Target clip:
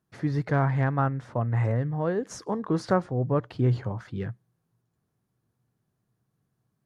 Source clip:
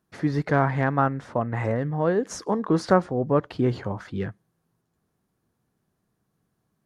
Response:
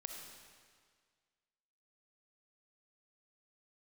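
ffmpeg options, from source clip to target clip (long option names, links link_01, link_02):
-af "equalizer=frequency=120:width=3.1:gain=10.5,volume=-5dB"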